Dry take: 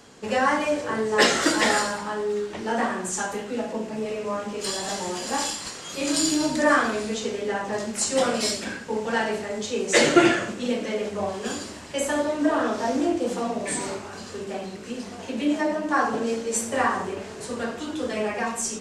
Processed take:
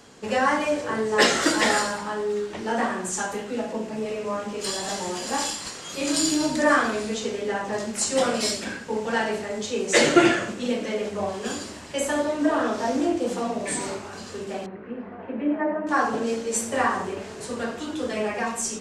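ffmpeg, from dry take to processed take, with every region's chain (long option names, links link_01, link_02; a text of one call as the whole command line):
ffmpeg -i in.wav -filter_complex "[0:a]asettb=1/sr,asplit=3[link_01][link_02][link_03];[link_01]atrim=end=14.664[link_04];[link_02]atrim=start=14.66:end=15.87,asetpts=PTS-STARTPTS,afade=type=in:duration=0.004:curve=qsin,afade=type=out:start_time=1.206:duration=0.004:curve=qsin,lowpass=frequency=1900:width=0.5412,lowpass=frequency=1900:width=1.3066,lowshelf=frequency=130:gain=-6[link_05];[link_03]atrim=start=15.866[link_06];[link_04][link_05]acrossfade=duration=0.004:curve1=hsin:curve2=qsin[link_07];[link_07][link_06]acrossfade=duration=0.004:curve1=qsin:curve2=hsin" out.wav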